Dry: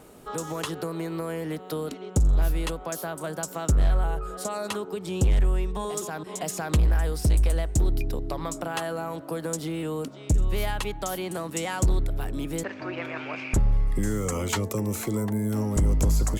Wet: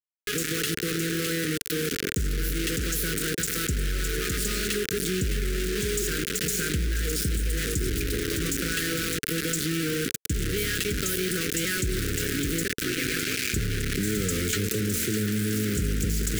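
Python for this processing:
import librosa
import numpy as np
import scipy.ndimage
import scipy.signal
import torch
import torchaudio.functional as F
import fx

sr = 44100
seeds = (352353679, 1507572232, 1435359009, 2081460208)

y = scipy.signal.sosfilt(scipy.signal.butter(4, 44.0, 'highpass', fs=sr, output='sos'), x)
y = fx.comb_fb(y, sr, f0_hz=190.0, decay_s=0.53, harmonics='odd', damping=0.0, mix_pct=50)
y = fx.echo_feedback(y, sr, ms=610, feedback_pct=34, wet_db=-10.0)
y = fx.quant_dither(y, sr, seeds[0], bits=6, dither='none')
y = scipy.signal.sosfilt(scipy.signal.cheby1(3, 1.0, [440.0, 1500.0], 'bandstop', fs=sr, output='sos'), y)
y = fx.low_shelf(y, sr, hz=60.0, db=-10.5)
y = fx.env_flatten(y, sr, amount_pct=70)
y = F.gain(torch.from_numpy(y), 2.5).numpy()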